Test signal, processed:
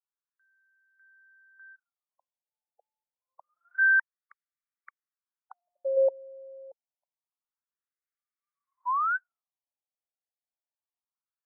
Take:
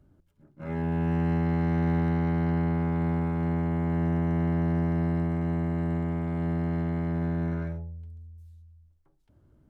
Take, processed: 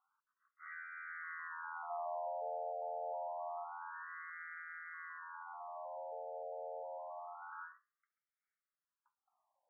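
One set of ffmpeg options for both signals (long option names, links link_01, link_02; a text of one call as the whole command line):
ffmpeg -i in.wav -af "highpass=frequency=520:width_type=q:width=0.5412,highpass=frequency=520:width_type=q:width=1.307,lowpass=frequency=2500:width_type=q:width=0.5176,lowpass=frequency=2500:width_type=q:width=0.7071,lowpass=frequency=2500:width_type=q:width=1.932,afreqshift=-130,afftfilt=real='re*between(b*sr/1024,610*pow(1700/610,0.5+0.5*sin(2*PI*0.27*pts/sr))/1.41,610*pow(1700/610,0.5+0.5*sin(2*PI*0.27*pts/sr))*1.41)':imag='im*between(b*sr/1024,610*pow(1700/610,0.5+0.5*sin(2*PI*0.27*pts/sr))/1.41,610*pow(1700/610,0.5+0.5*sin(2*PI*0.27*pts/sr))*1.41)':win_size=1024:overlap=0.75" out.wav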